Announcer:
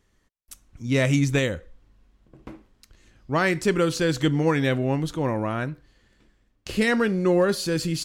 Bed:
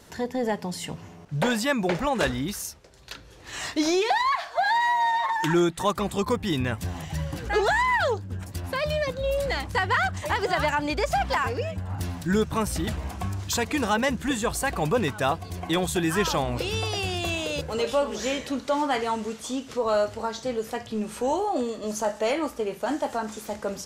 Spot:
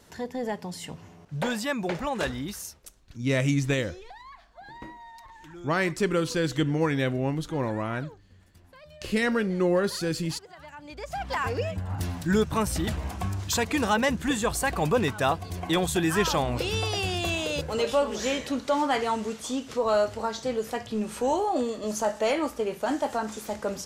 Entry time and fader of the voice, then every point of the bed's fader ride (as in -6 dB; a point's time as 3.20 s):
2.35 s, -3.5 dB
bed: 2.75 s -4.5 dB
3.16 s -23.5 dB
10.59 s -23.5 dB
11.53 s 0 dB